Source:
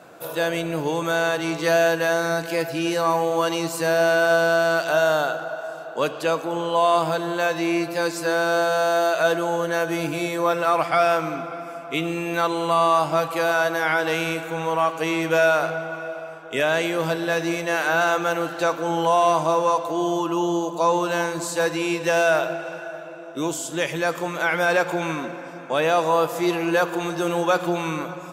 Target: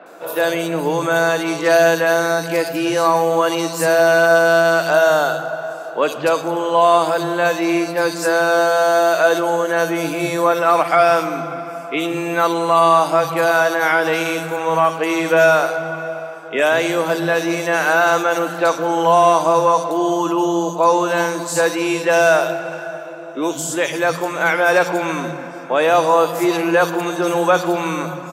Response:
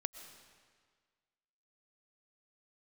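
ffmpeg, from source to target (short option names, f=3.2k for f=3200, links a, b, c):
-filter_complex "[0:a]highpass=110,acrossover=split=200|3200[a][b][c];[c]adelay=60[d];[a]adelay=180[e];[e][b][d]amix=inputs=3:normalize=0,volume=6dB"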